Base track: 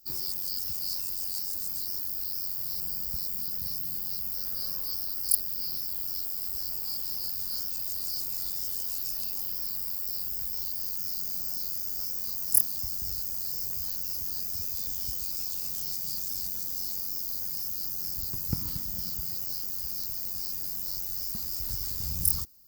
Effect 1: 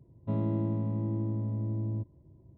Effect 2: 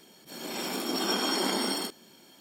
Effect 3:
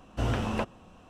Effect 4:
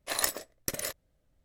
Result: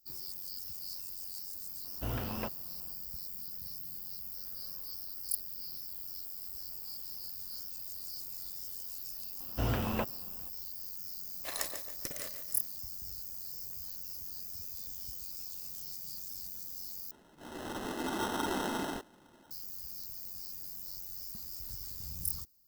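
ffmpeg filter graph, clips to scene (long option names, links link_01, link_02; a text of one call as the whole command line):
ffmpeg -i bed.wav -i cue0.wav -i cue1.wav -i cue2.wav -i cue3.wav -filter_complex "[3:a]asplit=2[link_01][link_02];[0:a]volume=-10dB[link_03];[4:a]aecho=1:1:144|288|432|576|720:0.355|0.145|0.0596|0.0245|0.01[link_04];[2:a]acrusher=samples=19:mix=1:aa=0.000001[link_05];[link_03]asplit=2[link_06][link_07];[link_06]atrim=end=17.114[link_08];[link_05]atrim=end=2.4,asetpts=PTS-STARTPTS,volume=-5.5dB[link_09];[link_07]atrim=start=19.506[link_10];[link_01]atrim=end=1.09,asetpts=PTS-STARTPTS,volume=-8.5dB,afade=type=in:duration=0.004:curve=hsin,afade=type=out:start_time=1.086:duration=0.004:curve=hsin,adelay=1840[link_11];[link_02]atrim=end=1.09,asetpts=PTS-STARTPTS,volume=-3.5dB,afade=type=in:duration=0.004:curve=hsin,afade=type=out:start_time=1.086:duration=0.004:curve=hsin,adelay=9400[link_12];[link_04]atrim=end=1.44,asetpts=PTS-STARTPTS,volume=-8.5dB,afade=type=in:duration=0.004:curve=hsin,afade=type=out:start_time=1.436:duration=0.004:curve=hsin,adelay=11370[link_13];[link_08][link_09]acrossfade=duration=0.004:curve1=hsin:curve2=hsin[link_14];[link_14][link_10]acrossfade=duration=0.004:curve1=hsin:curve2=hsin[link_15];[link_15][link_11][link_12][link_13]amix=inputs=4:normalize=0" out.wav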